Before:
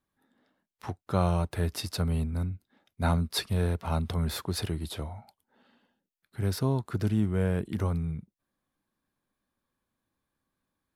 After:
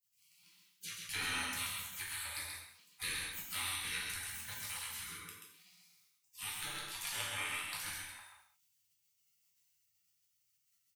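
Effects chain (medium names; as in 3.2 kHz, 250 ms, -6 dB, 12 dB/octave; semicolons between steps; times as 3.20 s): high-pass 280 Hz 24 dB/octave; peaking EQ 620 Hz +13 dB 0.44 oct; in parallel at -10 dB: hard clipper -27 dBFS, distortion -6 dB; on the sum: compression 2:1, threshold -45 dBFS, peak gain reduction 15 dB; spectral gate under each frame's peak -30 dB weak; band-stop 1.1 kHz, Q 13; delay 133 ms -4.5 dB; gated-style reverb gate 240 ms falling, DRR -3.5 dB; trim +15.5 dB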